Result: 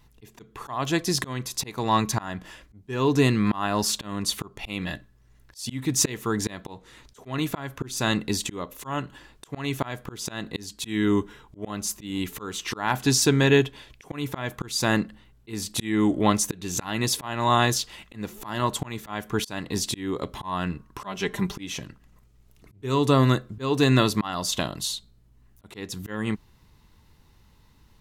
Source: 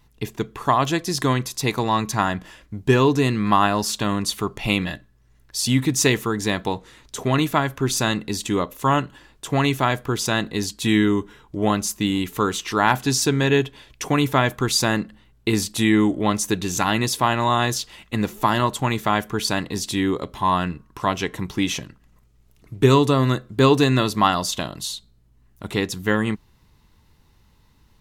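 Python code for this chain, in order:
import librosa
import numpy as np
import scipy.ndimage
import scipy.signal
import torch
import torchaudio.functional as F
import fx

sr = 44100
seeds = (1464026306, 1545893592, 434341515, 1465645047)

y = fx.comb(x, sr, ms=5.0, depth=0.7, at=(21.02, 21.56))
y = fx.auto_swell(y, sr, attack_ms=331.0)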